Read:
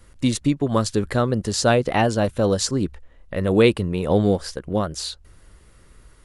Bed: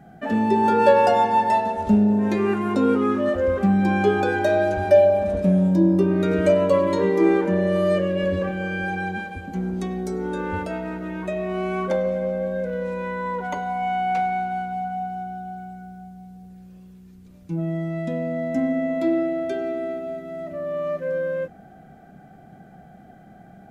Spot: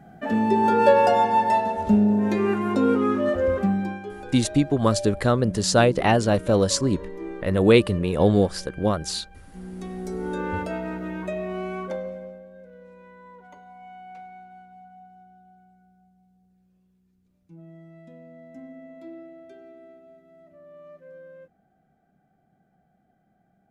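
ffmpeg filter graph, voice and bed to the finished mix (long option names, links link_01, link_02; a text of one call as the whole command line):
ffmpeg -i stem1.wav -i stem2.wav -filter_complex "[0:a]adelay=4100,volume=0dB[link_01];[1:a]volume=15.5dB,afade=type=out:start_time=3.54:duration=0.47:silence=0.149624,afade=type=in:start_time=9.51:duration=0.9:silence=0.149624,afade=type=out:start_time=11.06:duration=1.38:silence=0.112202[link_02];[link_01][link_02]amix=inputs=2:normalize=0" out.wav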